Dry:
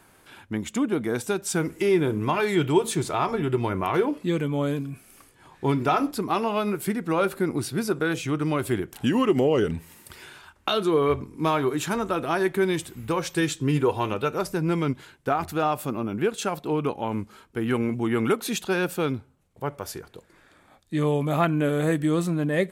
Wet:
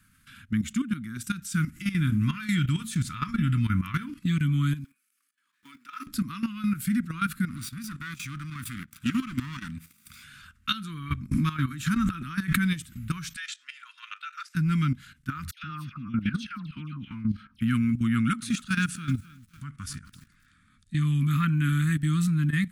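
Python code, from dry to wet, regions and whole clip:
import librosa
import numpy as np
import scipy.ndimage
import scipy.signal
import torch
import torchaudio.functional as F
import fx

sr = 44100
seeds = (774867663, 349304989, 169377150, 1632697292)

y = fx.chain(x, sr, fx.law_mismatch(coded='A'),
    fx.highpass(hz=370.0, slope=24),
    fx.level_steps(step_db=17), at=(4.84, 6.07))
y = fx.chain(y, sr, fx.lower_of_two(delay_ms=0.83),
    fx.highpass(hz=250.0, slope=6),
    fx.chopper(hz=2.8, depth_pct=60, duty_pct=85), at=(7.48, 10.24))
y = fx.chain(y, sr, fx.high_shelf(hz=3500.0, db=-3.5),
    fx.pre_swell(db_per_s=30.0), at=(11.31, 12.71))
y = fx.chain(y, sr, fx.highpass(hz=1300.0, slope=24),
    fx.air_absorb(metres=83.0), at=(13.36, 14.55))
y = fx.chain(y, sr, fx.savgol(points=15),
    fx.low_shelf(hz=82.0, db=-2.5),
    fx.dispersion(late='lows', ms=118.0, hz=1400.0), at=(15.51, 17.61))
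y = fx.chain(y, sr, fx.resample_bad(factor=2, down='none', up='filtered'),
    fx.echo_crushed(ms=262, feedback_pct=35, bits=7, wet_db=-14.5), at=(18.16, 21.03))
y = scipy.signal.sosfilt(scipy.signal.ellip(3, 1.0, 40, [240.0, 1300.0], 'bandstop', fs=sr, output='sos'), y)
y = fx.low_shelf(y, sr, hz=310.0, db=7.0)
y = fx.level_steps(y, sr, step_db=13)
y = F.gain(torch.from_numpy(y), 2.5).numpy()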